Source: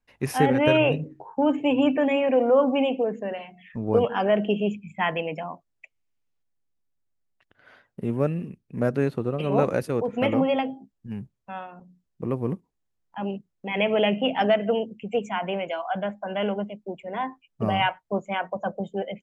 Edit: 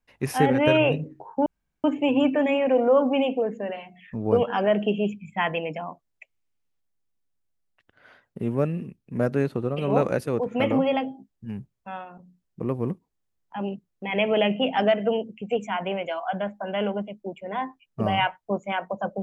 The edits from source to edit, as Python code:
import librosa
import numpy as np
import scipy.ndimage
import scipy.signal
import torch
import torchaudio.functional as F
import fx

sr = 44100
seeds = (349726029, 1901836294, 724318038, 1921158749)

y = fx.edit(x, sr, fx.insert_room_tone(at_s=1.46, length_s=0.38), tone=tone)